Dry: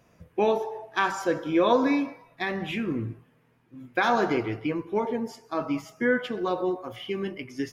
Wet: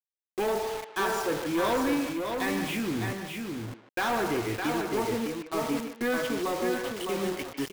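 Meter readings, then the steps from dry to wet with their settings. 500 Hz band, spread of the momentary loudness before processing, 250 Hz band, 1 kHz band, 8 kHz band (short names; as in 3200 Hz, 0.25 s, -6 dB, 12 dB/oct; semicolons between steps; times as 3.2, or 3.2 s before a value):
-2.5 dB, 11 LU, -2.0 dB, -2.5 dB, +8.5 dB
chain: bit-crush 6-bit; speakerphone echo 0.15 s, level -11 dB; soft clip -23.5 dBFS, distortion -10 dB; on a send: echo 0.61 s -5 dB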